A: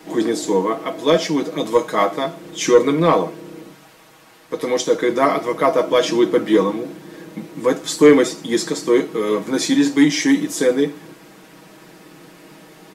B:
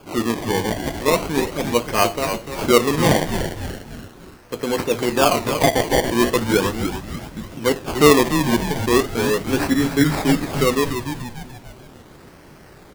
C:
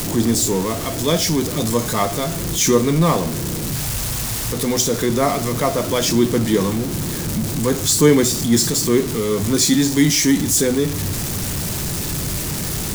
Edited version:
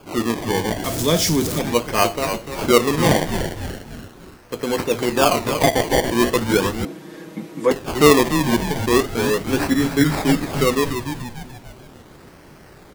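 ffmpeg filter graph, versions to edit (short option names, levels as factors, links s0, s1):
-filter_complex "[1:a]asplit=3[s0][s1][s2];[s0]atrim=end=0.842[s3];[2:a]atrim=start=0.838:end=1.592[s4];[s1]atrim=start=1.588:end=6.852[s5];[0:a]atrim=start=6.848:end=7.712[s6];[s2]atrim=start=7.708[s7];[s3][s4]acrossfade=d=0.004:c1=hsin:c2=hsin[s8];[s8][s5]acrossfade=d=0.004:c1=hsin:c2=hsin[s9];[s9][s6]acrossfade=d=0.004:c1=hsin:c2=hsin[s10];[s10][s7]acrossfade=d=0.004:c1=hsin:c2=hsin"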